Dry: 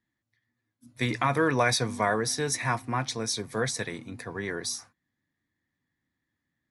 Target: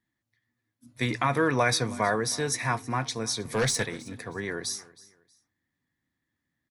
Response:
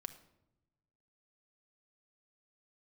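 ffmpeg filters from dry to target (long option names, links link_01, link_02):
-filter_complex "[0:a]asettb=1/sr,asplit=3[link_01][link_02][link_03];[link_01]atrim=end=3.454[link_04];[link_02]atrim=start=3.45:end=3.86,asetpts=PTS-STARTPTS,afade=type=in:duration=0.004:curve=qsin,afade=type=out:start_time=0.406:duration=0.004:curve=qsin,aeval=exprs='0.158*(cos(1*acos(clip(val(0)/0.158,-1,1)))-cos(1*PI/2))+0.0355*(cos(5*acos(clip(val(0)/0.158,-1,1)))-cos(5*PI/2))+0.00501*(cos(6*acos(clip(val(0)/0.158,-1,1)))-cos(6*PI/2))':channel_layout=same[link_05];[link_03]atrim=start=3.856[link_06];[link_04][link_05]acrossfade=duration=0.004:curve1=hsin:curve2=qsin[link_07];[link_07][link_06]acrossfade=duration=0.004:curve1=qsin:curve2=hsin,aecho=1:1:318|636:0.0891|0.025"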